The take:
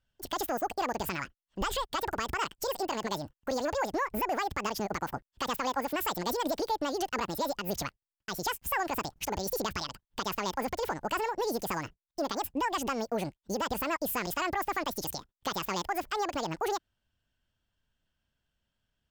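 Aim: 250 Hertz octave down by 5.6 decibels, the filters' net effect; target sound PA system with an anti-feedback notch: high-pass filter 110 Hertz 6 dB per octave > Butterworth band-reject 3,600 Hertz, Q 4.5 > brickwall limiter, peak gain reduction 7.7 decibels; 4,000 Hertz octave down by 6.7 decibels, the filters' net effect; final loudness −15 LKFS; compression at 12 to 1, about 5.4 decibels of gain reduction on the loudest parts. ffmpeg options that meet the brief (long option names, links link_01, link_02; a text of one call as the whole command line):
ffmpeg -i in.wav -af "equalizer=frequency=250:width_type=o:gain=-6.5,equalizer=frequency=4000:width_type=o:gain=-8,acompressor=threshold=-33dB:ratio=12,highpass=frequency=110:poles=1,asuperstop=centerf=3600:order=8:qfactor=4.5,volume=26.5dB,alimiter=limit=-4.5dB:level=0:latency=1" out.wav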